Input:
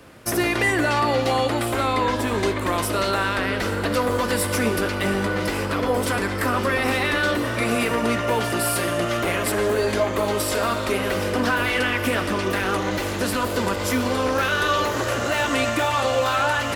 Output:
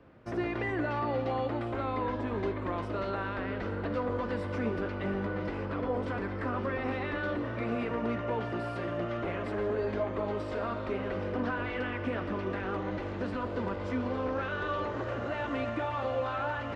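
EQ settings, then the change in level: tape spacing loss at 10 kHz 38 dB; -8.0 dB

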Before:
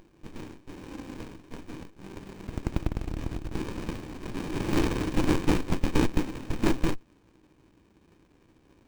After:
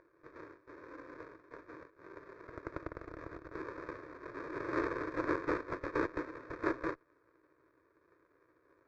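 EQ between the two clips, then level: band-pass 1200 Hz, Q 0.63; air absorption 160 m; fixed phaser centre 800 Hz, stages 6; +2.0 dB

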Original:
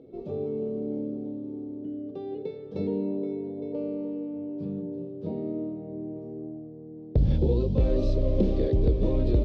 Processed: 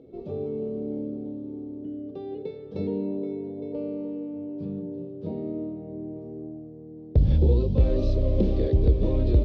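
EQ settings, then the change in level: air absorption 94 m; bell 73 Hz +7 dB 0.64 oct; high shelf 3800 Hz +7 dB; 0.0 dB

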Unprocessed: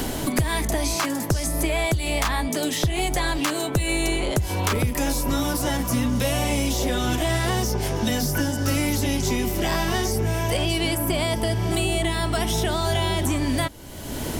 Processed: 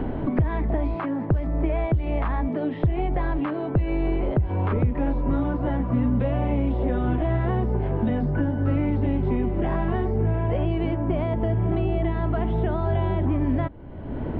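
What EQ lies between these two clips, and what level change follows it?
air absorption 470 m; tape spacing loss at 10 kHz 44 dB; +2.5 dB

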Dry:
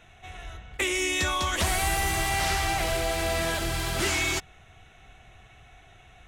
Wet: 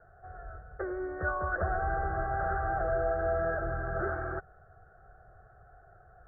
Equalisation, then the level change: steep low-pass 1600 Hz 96 dB/oct; low shelf 150 Hz -6.5 dB; fixed phaser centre 970 Hz, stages 6; +2.0 dB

